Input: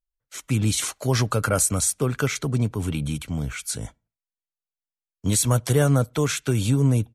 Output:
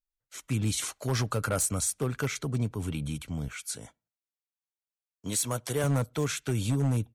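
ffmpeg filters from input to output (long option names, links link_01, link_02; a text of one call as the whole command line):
ffmpeg -i in.wav -filter_complex "[0:a]asettb=1/sr,asplit=3[link_01][link_02][link_03];[link_01]atrim=end=3.484[link_04];[link_02]atrim=start=3.48:end=5.84,asetpts=PTS-STARTPTS,afade=type=in:duration=0.004:curve=qsin,afade=type=out:start_time=2.356:duration=0.004:curve=qsin,highpass=frequency=290:poles=1[link_05];[link_03]atrim=start=5.836[link_06];[link_04][link_05]acrossfade=duration=0.004:curve1=hsin:curve2=qsin[link_07];[link_07][link_06]acrossfade=duration=0.004:curve1=qsin:curve2=hsin,aeval=exprs='0.224*(abs(mod(val(0)/0.224+3,4)-2)-1)':channel_layout=same,volume=-6.5dB" out.wav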